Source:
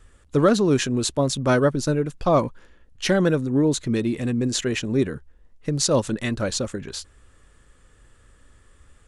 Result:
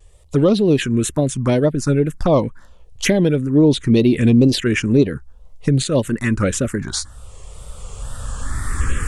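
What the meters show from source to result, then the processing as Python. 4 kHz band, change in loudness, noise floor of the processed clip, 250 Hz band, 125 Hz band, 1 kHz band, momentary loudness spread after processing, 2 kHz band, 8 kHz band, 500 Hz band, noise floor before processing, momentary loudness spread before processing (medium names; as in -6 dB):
+2.5 dB, +5.0 dB, -44 dBFS, +7.0 dB, +7.5 dB, -1.0 dB, 15 LU, +4.0 dB, +2.0 dB, +4.0 dB, -56 dBFS, 10 LU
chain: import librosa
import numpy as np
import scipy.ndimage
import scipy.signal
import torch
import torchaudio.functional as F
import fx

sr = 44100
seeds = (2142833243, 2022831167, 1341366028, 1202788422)

y = fx.recorder_agc(x, sr, target_db=-8.5, rise_db_per_s=11.0, max_gain_db=30)
y = fx.env_phaser(y, sr, low_hz=240.0, high_hz=1700.0, full_db=-12.0)
y = fx.wow_flutter(y, sr, seeds[0], rate_hz=2.1, depth_cents=98.0)
y = y * librosa.db_to_amplitude(4.0)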